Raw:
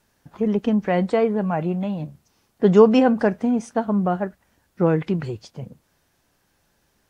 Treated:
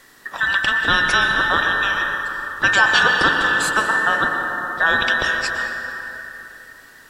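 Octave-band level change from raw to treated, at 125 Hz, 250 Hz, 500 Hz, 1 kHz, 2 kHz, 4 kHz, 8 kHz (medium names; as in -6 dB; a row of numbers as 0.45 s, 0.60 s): -10.0 dB, -13.0 dB, -9.5 dB, +8.0 dB, +22.5 dB, +19.5 dB, no reading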